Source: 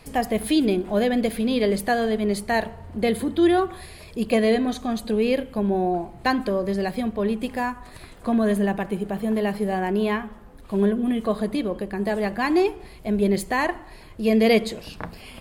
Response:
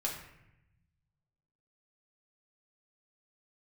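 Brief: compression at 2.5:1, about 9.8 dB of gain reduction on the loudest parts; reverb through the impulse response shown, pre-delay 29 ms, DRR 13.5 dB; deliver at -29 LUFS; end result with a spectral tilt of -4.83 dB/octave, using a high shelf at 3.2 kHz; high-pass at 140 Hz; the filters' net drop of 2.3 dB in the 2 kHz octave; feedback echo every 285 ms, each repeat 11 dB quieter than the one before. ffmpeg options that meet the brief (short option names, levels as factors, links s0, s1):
-filter_complex "[0:a]highpass=140,equalizer=f=2000:t=o:g=-4.5,highshelf=f=3200:g=6,acompressor=threshold=0.0316:ratio=2.5,aecho=1:1:285|570|855:0.282|0.0789|0.0221,asplit=2[s0][s1];[1:a]atrim=start_sample=2205,adelay=29[s2];[s1][s2]afir=irnorm=-1:irlink=0,volume=0.15[s3];[s0][s3]amix=inputs=2:normalize=0,volume=1.26"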